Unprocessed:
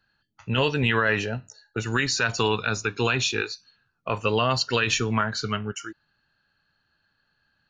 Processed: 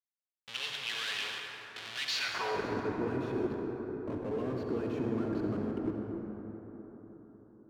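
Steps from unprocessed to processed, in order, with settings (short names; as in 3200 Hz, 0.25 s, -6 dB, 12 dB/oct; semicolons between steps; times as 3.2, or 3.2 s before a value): low-pass opened by the level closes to 1300 Hz, open at -18 dBFS; AM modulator 48 Hz, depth 25%; Schmitt trigger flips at -34 dBFS; band-pass sweep 3300 Hz -> 290 Hz, 2.18–2.69; reverb RT60 4.6 s, pre-delay 58 ms, DRR 0.5 dB; gain +3 dB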